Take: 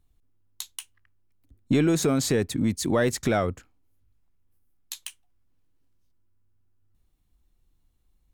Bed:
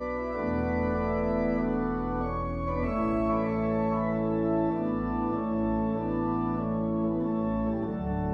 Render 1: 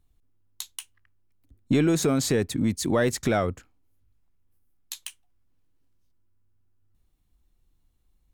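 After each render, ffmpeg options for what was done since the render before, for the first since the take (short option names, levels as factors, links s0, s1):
-af anull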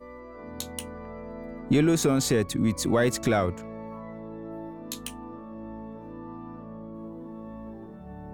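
-filter_complex "[1:a]volume=0.251[s0];[0:a][s0]amix=inputs=2:normalize=0"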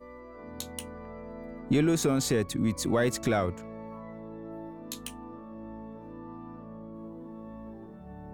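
-af "volume=0.708"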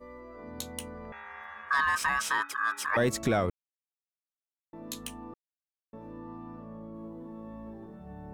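-filter_complex "[0:a]asettb=1/sr,asplit=3[s0][s1][s2];[s0]atrim=end=1.124[s3];[s1]atrim=start=1.12:end=2.97,asetpts=PTS-STARTPTS,afade=t=in:d=0.004:c=qsin,afade=t=out:st=1.846:d=0.004:c=qsin,aeval=exprs='val(0)*sin(2*PI*1400*n/s)':c=same[s4];[s2]atrim=start=2.966[s5];[s3][s4]acrossfade=d=0.004:c1=hsin:c2=qsin[s6];[s6][s5]acrossfade=d=0.004:c1=qsin:c2=hsin,asplit=5[s7][s8][s9][s10][s11];[s7]atrim=end=3.5,asetpts=PTS-STARTPTS,afade=t=out:st=3.496:d=0.004:c=hsin[s12];[s8]atrim=start=3.5:end=4.73,asetpts=PTS-STARTPTS,volume=0[s13];[s9]atrim=start=4.73:end=5.34,asetpts=PTS-STARTPTS,afade=t=in:d=0.004:c=hsin,afade=t=out:st=0.606:d=0.004:c=hsin[s14];[s10]atrim=start=5.34:end=5.93,asetpts=PTS-STARTPTS,volume=0[s15];[s11]atrim=start=5.93,asetpts=PTS-STARTPTS,afade=t=in:d=0.004:c=hsin[s16];[s12][s13][s14][s15][s16]concat=n=5:v=0:a=1"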